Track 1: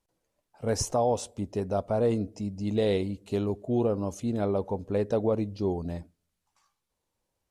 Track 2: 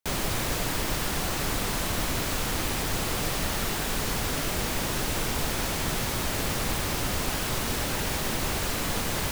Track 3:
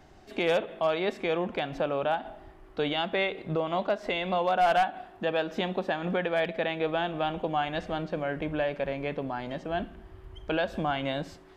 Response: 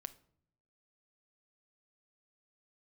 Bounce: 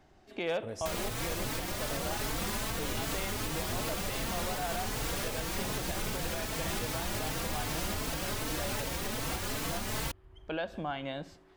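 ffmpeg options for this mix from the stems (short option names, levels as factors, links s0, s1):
-filter_complex "[0:a]acompressor=threshold=0.0501:ratio=6,volume=0.282[s0];[1:a]asplit=2[s1][s2];[s2]adelay=4,afreqshift=2.6[s3];[s1][s3]amix=inputs=2:normalize=1,adelay=800,volume=1.33[s4];[2:a]volume=0.447[s5];[s0][s4][s5]amix=inputs=3:normalize=0,alimiter=limit=0.0668:level=0:latency=1:release=452"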